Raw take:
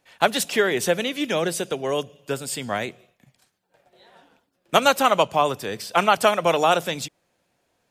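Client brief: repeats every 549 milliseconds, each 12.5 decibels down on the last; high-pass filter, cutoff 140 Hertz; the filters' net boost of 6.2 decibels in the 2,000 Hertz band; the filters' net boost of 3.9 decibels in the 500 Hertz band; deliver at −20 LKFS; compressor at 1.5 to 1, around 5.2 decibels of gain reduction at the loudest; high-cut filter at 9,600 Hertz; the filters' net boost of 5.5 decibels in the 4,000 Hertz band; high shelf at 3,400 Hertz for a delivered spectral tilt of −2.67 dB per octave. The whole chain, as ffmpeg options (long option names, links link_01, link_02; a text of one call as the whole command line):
ffmpeg -i in.wav -af "highpass=140,lowpass=9600,equalizer=frequency=500:width_type=o:gain=4.5,equalizer=frequency=2000:width_type=o:gain=7.5,highshelf=frequency=3400:gain=-3,equalizer=frequency=4000:width_type=o:gain=6,acompressor=threshold=-23dB:ratio=1.5,aecho=1:1:549|1098|1647:0.237|0.0569|0.0137,volume=2dB" out.wav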